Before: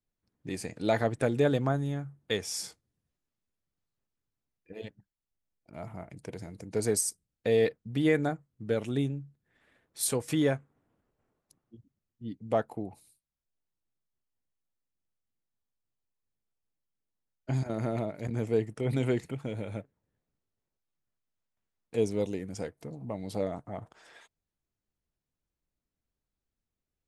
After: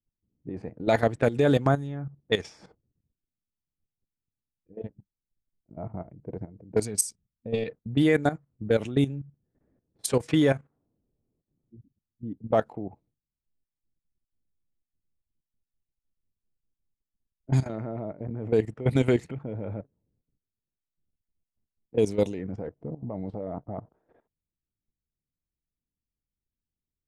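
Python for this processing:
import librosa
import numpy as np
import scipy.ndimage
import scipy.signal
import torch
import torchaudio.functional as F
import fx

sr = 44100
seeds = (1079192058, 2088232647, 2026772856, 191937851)

y = fx.spec_box(x, sr, start_s=6.83, length_s=0.86, low_hz=250.0, high_hz=2200.0, gain_db=-7)
y = fx.level_steps(y, sr, step_db=14)
y = fx.env_lowpass(y, sr, base_hz=310.0, full_db=-28.0)
y = y * librosa.db_to_amplitude(8.5)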